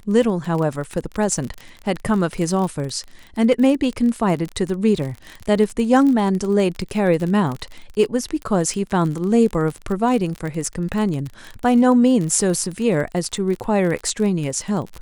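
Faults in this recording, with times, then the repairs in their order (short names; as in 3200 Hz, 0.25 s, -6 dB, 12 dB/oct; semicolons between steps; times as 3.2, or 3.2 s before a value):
crackle 35/s -24 dBFS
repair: de-click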